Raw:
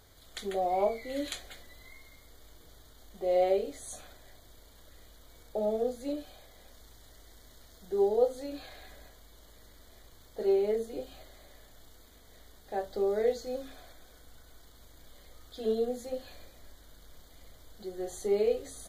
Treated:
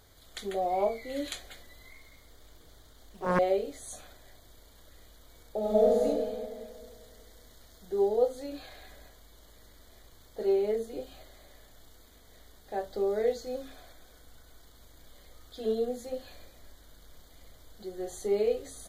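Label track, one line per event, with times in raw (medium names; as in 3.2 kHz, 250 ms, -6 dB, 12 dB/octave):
1.900000	3.390000	loudspeaker Doppler distortion depth 0.74 ms
5.590000	6.040000	reverb throw, RT60 2 s, DRR -6 dB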